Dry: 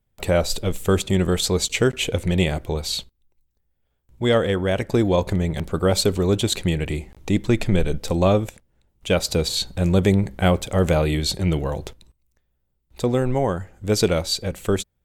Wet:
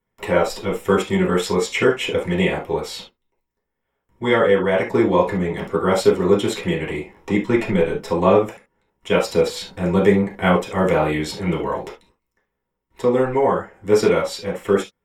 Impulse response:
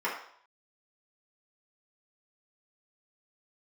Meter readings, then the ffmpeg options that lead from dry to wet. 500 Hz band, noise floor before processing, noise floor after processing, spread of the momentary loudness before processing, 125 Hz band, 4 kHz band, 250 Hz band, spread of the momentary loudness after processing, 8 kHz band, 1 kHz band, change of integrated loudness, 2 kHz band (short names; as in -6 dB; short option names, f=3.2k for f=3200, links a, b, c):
+4.5 dB, -72 dBFS, -78 dBFS, 7 LU, -4.0 dB, -4.5 dB, +1.5 dB, 9 LU, -6.0 dB, +6.0 dB, +2.0 dB, +5.0 dB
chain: -filter_complex "[1:a]atrim=start_sample=2205,atrim=end_sample=3528[a];[0:a][a]afir=irnorm=-1:irlink=0,volume=-3.5dB"